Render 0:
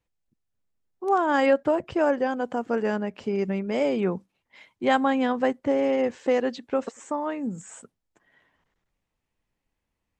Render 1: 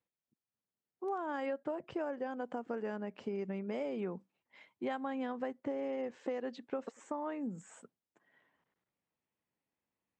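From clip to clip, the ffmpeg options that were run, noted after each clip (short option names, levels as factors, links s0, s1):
-af "highpass=150,highshelf=f=4000:g=-9,acompressor=threshold=0.0398:ratio=6,volume=0.473"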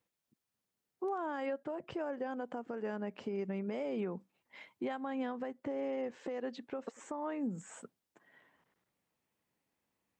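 -af "alimiter=level_in=3.55:limit=0.0631:level=0:latency=1:release=402,volume=0.282,volume=2"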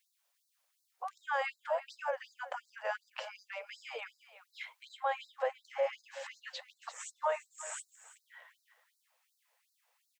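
-af "aecho=1:1:340:0.178,flanger=delay=2.2:depth=3.8:regen=-74:speed=1:shape=sinusoidal,afftfilt=real='re*gte(b*sr/1024,460*pow(3900/460,0.5+0.5*sin(2*PI*2.7*pts/sr)))':imag='im*gte(b*sr/1024,460*pow(3900/460,0.5+0.5*sin(2*PI*2.7*pts/sr)))':win_size=1024:overlap=0.75,volume=5.31"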